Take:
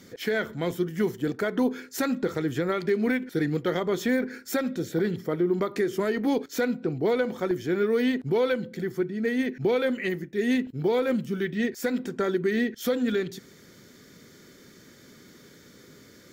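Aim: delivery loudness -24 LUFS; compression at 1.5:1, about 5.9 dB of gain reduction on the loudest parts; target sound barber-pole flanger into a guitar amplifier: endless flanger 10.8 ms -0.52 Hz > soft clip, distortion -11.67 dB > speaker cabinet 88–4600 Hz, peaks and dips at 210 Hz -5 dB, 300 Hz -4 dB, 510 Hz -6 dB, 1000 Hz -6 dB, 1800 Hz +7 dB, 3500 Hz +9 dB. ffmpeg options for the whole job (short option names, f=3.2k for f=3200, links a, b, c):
-filter_complex "[0:a]acompressor=threshold=-37dB:ratio=1.5,asplit=2[a][b];[b]adelay=10.8,afreqshift=-0.52[c];[a][c]amix=inputs=2:normalize=1,asoftclip=threshold=-32dB,highpass=88,equalizer=f=210:t=q:w=4:g=-5,equalizer=f=300:t=q:w=4:g=-4,equalizer=f=510:t=q:w=4:g=-6,equalizer=f=1k:t=q:w=4:g=-6,equalizer=f=1.8k:t=q:w=4:g=7,equalizer=f=3.5k:t=q:w=4:g=9,lowpass=f=4.6k:w=0.5412,lowpass=f=4.6k:w=1.3066,volume=16.5dB"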